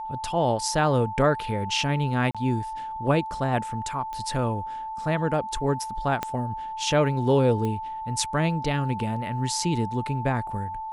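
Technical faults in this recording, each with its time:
tone 880 Hz -31 dBFS
2.31–2.35 gap 36 ms
4.13 pop -22 dBFS
6.23 pop -12 dBFS
7.65 pop -18 dBFS

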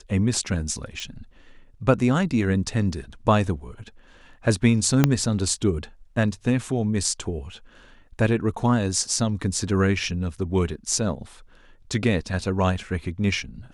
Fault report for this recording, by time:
1 pop
5.04 pop -3 dBFS

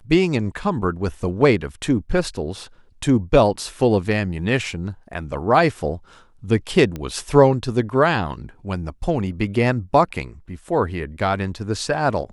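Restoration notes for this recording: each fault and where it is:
6.96 pop -16 dBFS

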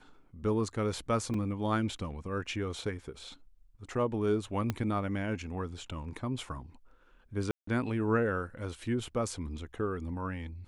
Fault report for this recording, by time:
1.34 gap 2.9 ms
4.7 pop -17 dBFS
7.51–7.67 gap 0.164 s

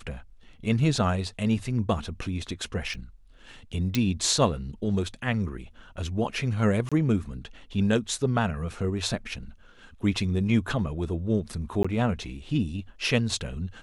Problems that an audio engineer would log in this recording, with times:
2.94 gap 4.3 ms
3.95 pop
6.89–6.92 gap 26 ms
11.83–11.85 gap 15 ms

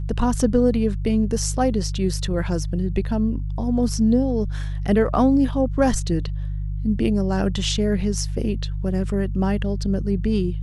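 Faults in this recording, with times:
hum 50 Hz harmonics 3 -26 dBFS

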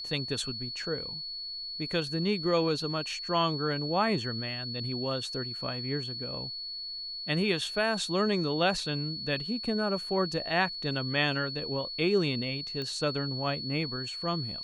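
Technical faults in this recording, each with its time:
tone 4400 Hz -36 dBFS
12.82 pop -24 dBFS

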